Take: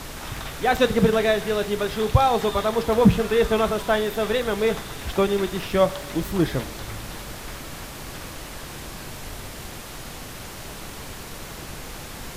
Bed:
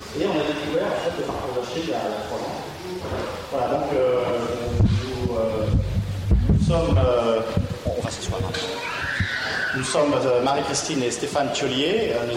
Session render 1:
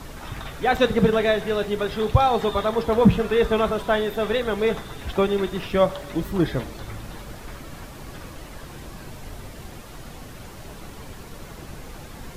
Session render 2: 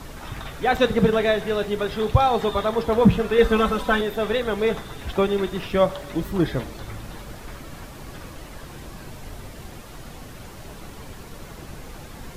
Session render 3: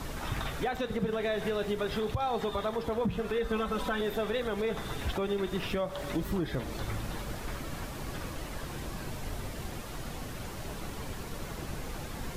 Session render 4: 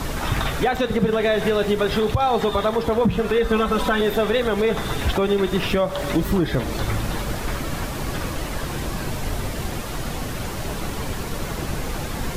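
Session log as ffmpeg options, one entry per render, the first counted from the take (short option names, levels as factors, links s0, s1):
-af "afftdn=nr=8:nf=-37"
-filter_complex "[0:a]asettb=1/sr,asplit=3[s0][s1][s2];[s0]atrim=end=3.384[s3];[s1]atrim=start=3.38:end=4.01,asetpts=PTS-STARTPTS,afade=t=in:d=0.004:c=qsin,afade=t=out:st=0.626:d=0.004:c=qsin,aecho=1:1:3.9:0.94,atrim=end_sample=27783[s4];[s2]atrim=start=4.006[s5];[s3][s4]acrossfade=d=0.004:c1=hsin:c2=qsin[s6];[s6][s5]acrossfade=d=0.004:c1=qsin:c2=hsin"
-af "acompressor=threshold=0.0631:ratio=2.5,alimiter=limit=0.0794:level=0:latency=1:release=181"
-af "volume=3.76"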